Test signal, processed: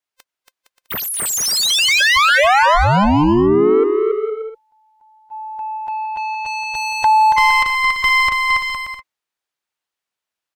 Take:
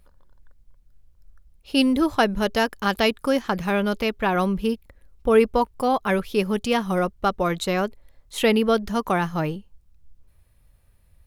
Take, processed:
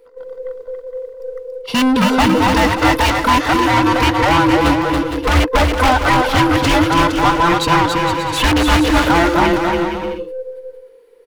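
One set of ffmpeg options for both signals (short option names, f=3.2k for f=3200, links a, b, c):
-filter_complex "[0:a]afftfilt=real='real(if(between(b,1,1008),(2*floor((b-1)/24)+1)*24-b,b),0)':imag='imag(if(between(b,1,1008),(2*floor((b-1)/24)+1)*24-b,b),0)*if(between(b,1,1008),-1,1)':win_size=2048:overlap=0.75,agate=range=-12dB:threshold=-48dB:ratio=16:detection=peak,lowshelf=f=99:g=11.5,asplit=2[a][b];[b]aeval=exprs='(mod(3.55*val(0)+1,2)-1)/3.55':c=same,volume=-8dB[c];[a][c]amix=inputs=2:normalize=0,asplit=2[d][e];[e]highpass=f=720:p=1,volume=24dB,asoftclip=type=tanh:threshold=-7.5dB[f];[d][f]amix=inputs=2:normalize=0,lowpass=f=3k:p=1,volume=-6dB,asplit=2[g][h];[h]aecho=0:1:280|462|580.3|657.2|707.2:0.631|0.398|0.251|0.158|0.1[i];[g][i]amix=inputs=2:normalize=0"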